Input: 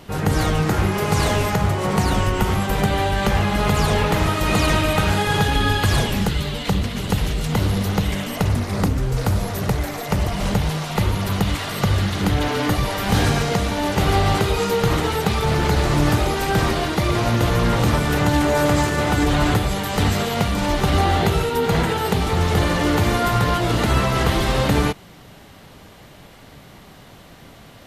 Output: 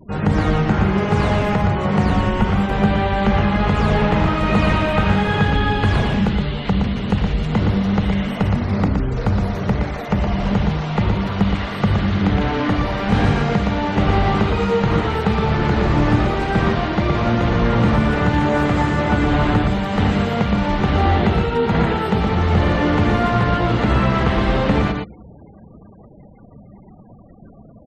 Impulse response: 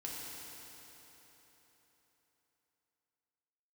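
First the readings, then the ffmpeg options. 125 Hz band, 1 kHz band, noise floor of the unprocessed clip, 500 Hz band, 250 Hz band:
+2.0 dB, +1.0 dB, −44 dBFS, +1.0 dB, +4.0 dB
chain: -filter_complex "[0:a]adynamicsmooth=sensitivity=4:basefreq=7700,aecho=1:1:118:0.531,asplit=2[link_01][link_02];[1:a]atrim=start_sample=2205[link_03];[link_02][link_03]afir=irnorm=-1:irlink=0,volume=-23dB[link_04];[link_01][link_04]amix=inputs=2:normalize=0,afftfilt=real='re*gte(hypot(re,im),0.0158)':imag='im*gte(hypot(re,im),0.0158)':win_size=1024:overlap=0.75,acrossover=split=3200[link_05][link_06];[link_06]acompressor=threshold=-45dB:ratio=4:attack=1:release=60[link_07];[link_05][link_07]amix=inputs=2:normalize=0,equalizer=frequency=210:width=5.9:gain=7.5"

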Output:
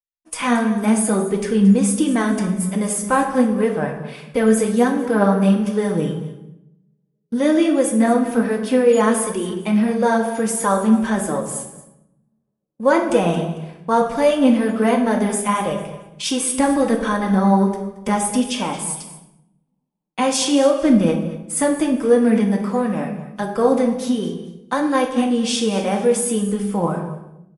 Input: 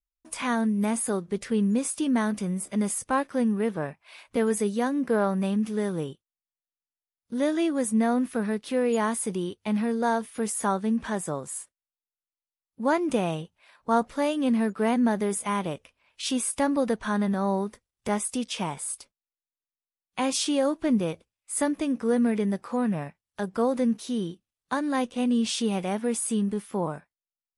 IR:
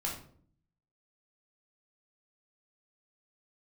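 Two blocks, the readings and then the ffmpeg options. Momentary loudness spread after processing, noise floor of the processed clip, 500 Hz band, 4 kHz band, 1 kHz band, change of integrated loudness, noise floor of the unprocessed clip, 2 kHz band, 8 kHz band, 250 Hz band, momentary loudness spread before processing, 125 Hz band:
11 LU, −69 dBFS, +9.5 dB, +7.5 dB, +8.5 dB, +8.5 dB, below −85 dBFS, +8.0 dB, +7.5 dB, +8.5 dB, 9 LU, +9.5 dB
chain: -filter_complex "[0:a]bandreject=frequency=4000:width=13,aecho=1:1:225|450|675:0.178|0.0551|0.0171,flanger=delay=1.7:depth=4.7:regen=29:speed=1.4:shape=sinusoidal,agate=range=-33dB:threshold=-48dB:ratio=3:detection=peak,asplit=2[link_01][link_02];[1:a]atrim=start_sample=2205,asetrate=26019,aresample=44100[link_03];[link_02][link_03]afir=irnorm=-1:irlink=0,volume=-5.5dB[link_04];[link_01][link_04]amix=inputs=2:normalize=0,volume=6.5dB"

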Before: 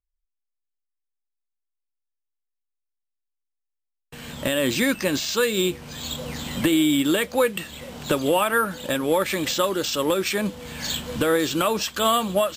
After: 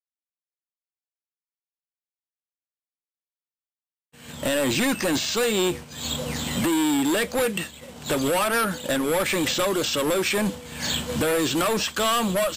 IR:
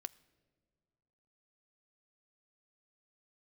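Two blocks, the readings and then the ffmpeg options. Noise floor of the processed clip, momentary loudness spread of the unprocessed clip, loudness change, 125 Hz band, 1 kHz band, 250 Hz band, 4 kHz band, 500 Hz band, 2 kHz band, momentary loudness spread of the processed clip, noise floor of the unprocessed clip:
below −85 dBFS, 11 LU, −0.5 dB, +0.5 dB, −1.5 dB, −1.0 dB, 0.0 dB, −1.5 dB, 0.0 dB, 7 LU, −81 dBFS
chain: -filter_complex "[0:a]agate=range=-33dB:threshold=-30dB:ratio=3:detection=peak,highpass=frequency=58:width=0.5412,highpass=frequency=58:width=1.3066,equalizer=frequency=8200:width_type=o:width=0.76:gain=4.5,acrossover=split=3600[link_01][link_02];[link_02]acompressor=threshold=-31dB:ratio=4:attack=1:release=60[link_03];[link_01][link_03]amix=inputs=2:normalize=0,acrossover=split=4300[link_04][link_05];[link_04]volume=24.5dB,asoftclip=hard,volume=-24.5dB[link_06];[link_06][link_05]amix=inputs=2:normalize=0,volume=4dB"

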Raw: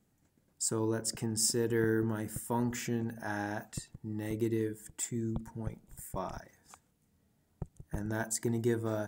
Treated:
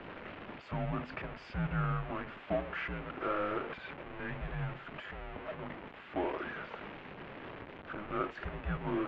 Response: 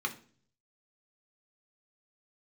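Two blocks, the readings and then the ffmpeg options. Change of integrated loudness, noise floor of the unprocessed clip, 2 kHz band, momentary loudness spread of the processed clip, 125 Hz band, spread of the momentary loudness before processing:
−5.0 dB, −73 dBFS, +2.0 dB, 12 LU, −2.5 dB, 13 LU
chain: -af "aeval=exprs='val(0)+0.5*0.0224*sgn(val(0))':channel_layout=same,highpass=frequency=470:width_type=q:width=0.5412,highpass=frequency=470:width_type=q:width=1.307,lowpass=frequency=3100:width_type=q:width=0.5176,lowpass=frequency=3100:width_type=q:width=0.7071,lowpass=frequency=3100:width_type=q:width=1.932,afreqshift=-300,volume=1dB"

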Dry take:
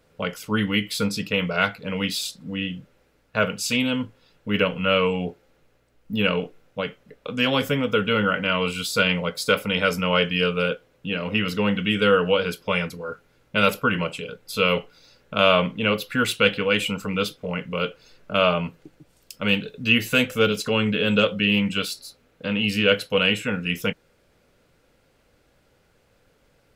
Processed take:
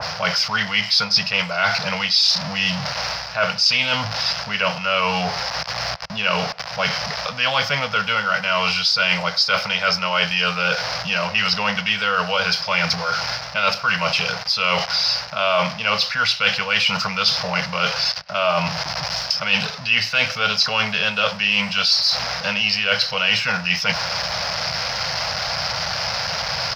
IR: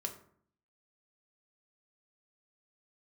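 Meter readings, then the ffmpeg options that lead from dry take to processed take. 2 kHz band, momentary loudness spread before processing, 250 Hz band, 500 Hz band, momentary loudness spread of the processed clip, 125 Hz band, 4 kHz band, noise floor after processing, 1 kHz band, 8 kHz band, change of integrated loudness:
+5.0 dB, 11 LU, −6.5 dB, −3.0 dB, 6 LU, −2.0 dB, +8.5 dB, −31 dBFS, +6.0 dB, +5.5 dB, +3.5 dB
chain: -filter_complex "[0:a]aeval=exprs='val(0)+0.5*0.0299*sgn(val(0))':channel_layout=same,acrossover=split=230|1300[link_01][link_02][link_03];[link_01]alimiter=level_in=4dB:limit=-24dB:level=0:latency=1,volume=-4dB[link_04];[link_04][link_02][link_03]amix=inputs=3:normalize=0,firequalizer=gain_entry='entry(160,0);entry(310,-24);entry(650,8);entry(3500,1);entry(5100,15);entry(7600,-21)':delay=0.05:min_phase=1,areverse,acompressor=threshold=-27dB:ratio=4,areverse,highpass=71,asplit=2[link_05][link_06];[link_06]adelay=100,highpass=300,lowpass=3400,asoftclip=type=hard:threshold=-23.5dB,volume=-20dB[link_07];[link_05][link_07]amix=inputs=2:normalize=0,acompressor=mode=upward:threshold=-34dB:ratio=2.5,adynamicequalizer=threshold=0.0112:dfrequency=2200:dqfactor=0.7:tfrequency=2200:tqfactor=0.7:attack=5:release=100:ratio=0.375:range=2:mode=boostabove:tftype=highshelf,volume=7.5dB"

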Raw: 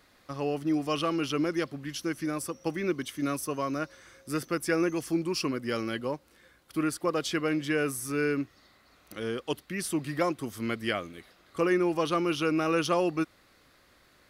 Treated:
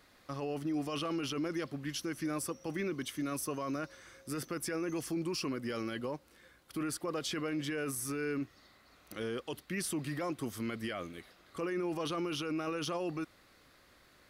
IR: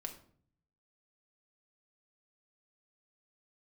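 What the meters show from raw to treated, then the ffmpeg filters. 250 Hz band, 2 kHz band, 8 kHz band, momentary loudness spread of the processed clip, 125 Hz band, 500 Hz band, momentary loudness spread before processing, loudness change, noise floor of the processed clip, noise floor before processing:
−6.5 dB, −8.0 dB, −2.5 dB, 7 LU, −5.5 dB, −8.0 dB, 9 LU, −7.0 dB, −64 dBFS, −62 dBFS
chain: -af "alimiter=level_in=2.5dB:limit=-24dB:level=0:latency=1:release=14,volume=-2.5dB,volume=-1.5dB"

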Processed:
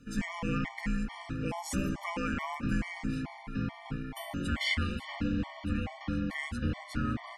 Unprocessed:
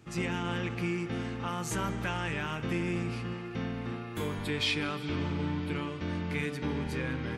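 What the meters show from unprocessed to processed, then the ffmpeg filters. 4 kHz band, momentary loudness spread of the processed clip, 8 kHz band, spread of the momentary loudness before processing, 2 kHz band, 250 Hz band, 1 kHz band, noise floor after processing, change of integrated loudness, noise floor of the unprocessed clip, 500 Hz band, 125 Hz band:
−3.5 dB, 6 LU, −2.0 dB, 5 LU, −1.0 dB, +0.5 dB, −1.5 dB, −49 dBFS, −1.0 dB, −40 dBFS, −6.5 dB, −2.0 dB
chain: -af "afreqshift=-380,afftfilt=real='re*gt(sin(2*PI*2.3*pts/sr)*(1-2*mod(floor(b*sr/1024/590),2)),0)':imag='im*gt(sin(2*PI*2.3*pts/sr)*(1-2*mod(floor(b*sr/1024/590),2)),0)':win_size=1024:overlap=0.75,volume=2.5dB"

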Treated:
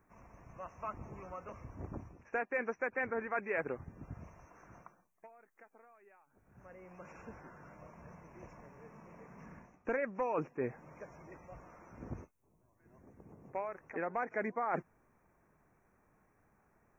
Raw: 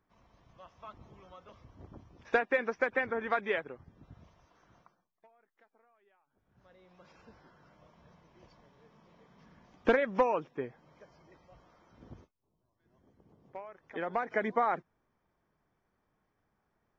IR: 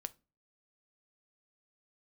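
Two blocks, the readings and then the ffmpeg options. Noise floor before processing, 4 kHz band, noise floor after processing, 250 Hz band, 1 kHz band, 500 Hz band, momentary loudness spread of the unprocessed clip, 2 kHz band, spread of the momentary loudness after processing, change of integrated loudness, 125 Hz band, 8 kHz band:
−80 dBFS, below −20 dB, −73 dBFS, −3.5 dB, −5.0 dB, −5.5 dB, 21 LU, −5.0 dB, 20 LU, −8.0 dB, +3.5 dB, can't be measured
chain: -af "areverse,acompressor=threshold=-39dB:ratio=10,areverse,asuperstop=centerf=3900:order=12:qfactor=1.3,volume=7dB"

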